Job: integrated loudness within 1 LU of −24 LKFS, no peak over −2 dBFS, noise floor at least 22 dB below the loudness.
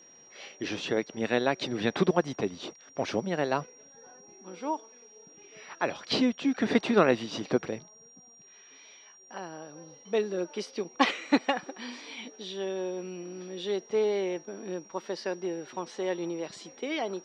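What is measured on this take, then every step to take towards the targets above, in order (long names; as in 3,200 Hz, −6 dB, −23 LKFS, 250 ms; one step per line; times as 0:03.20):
interfering tone 5,700 Hz; level of the tone −53 dBFS; integrated loudness −31.0 LKFS; sample peak −7.5 dBFS; target loudness −24.0 LKFS
→ notch filter 5,700 Hz, Q 30
level +7 dB
brickwall limiter −2 dBFS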